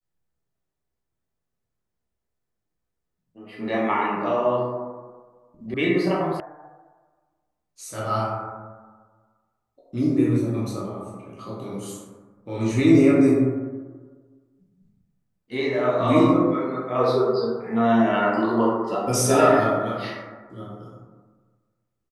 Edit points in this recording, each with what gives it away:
5.74 s: sound stops dead
6.40 s: sound stops dead

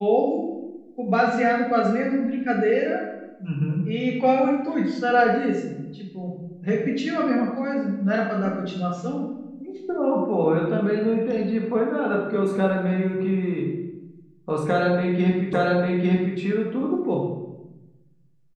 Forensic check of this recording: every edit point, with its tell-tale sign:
15.53 s: repeat of the last 0.85 s

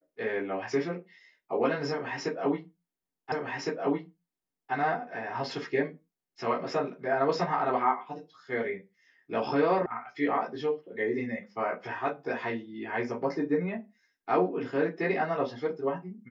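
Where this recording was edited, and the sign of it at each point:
3.32 s: repeat of the last 1.41 s
9.86 s: sound stops dead

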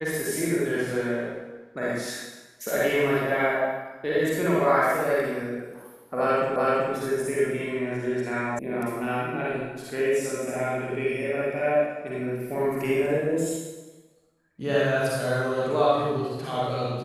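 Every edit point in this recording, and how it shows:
6.56 s: repeat of the last 0.38 s
8.59 s: sound stops dead

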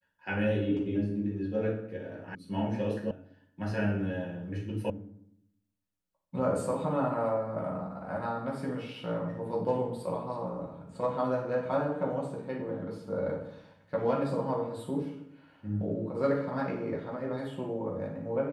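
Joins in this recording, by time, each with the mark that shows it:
2.35 s: sound stops dead
3.11 s: sound stops dead
4.90 s: sound stops dead

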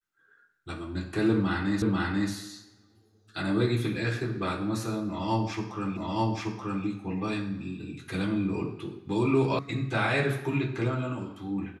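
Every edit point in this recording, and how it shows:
1.82 s: repeat of the last 0.49 s
5.97 s: repeat of the last 0.88 s
9.59 s: sound stops dead

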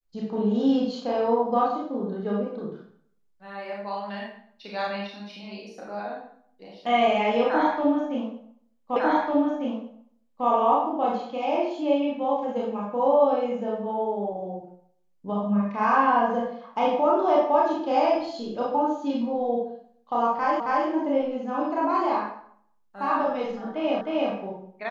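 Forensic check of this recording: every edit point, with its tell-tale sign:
8.96 s: repeat of the last 1.5 s
20.60 s: repeat of the last 0.27 s
24.01 s: repeat of the last 0.31 s

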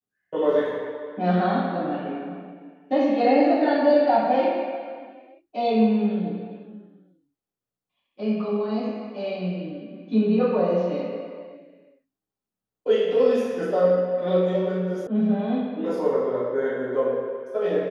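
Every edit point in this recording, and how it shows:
15.07 s: sound stops dead

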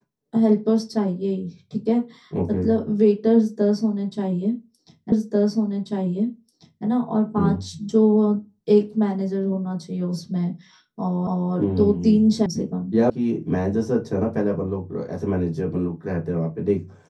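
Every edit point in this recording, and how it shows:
5.12 s: repeat of the last 1.74 s
11.27 s: repeat of the last 0.26 s
12.46 s: sound stops dead
13.10 s: sound stops dead

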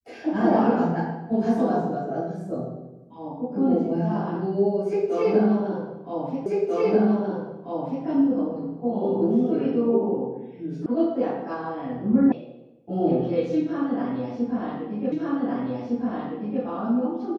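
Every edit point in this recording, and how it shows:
6.46 s: repeat of the last 1.59 s
10.86 s: sound stops dead
12.32 s: sound stops dead
15.12 s: repeat of the last 1.51 s

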